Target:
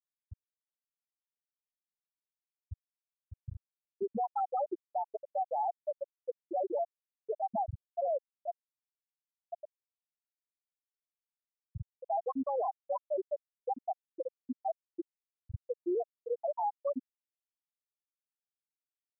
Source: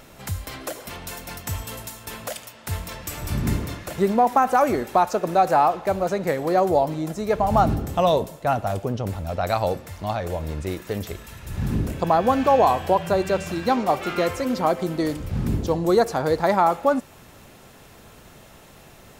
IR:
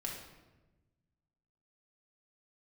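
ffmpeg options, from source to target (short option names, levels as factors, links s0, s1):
-af "afftfilt=real='re*gte(hypot(re,im),1)':imag='im*gte(hypot(re,im),1)':win_size=1024:overlap=0.75,alimiter=limit=0.106:level=0:latency=1:release=28,volume=0.447"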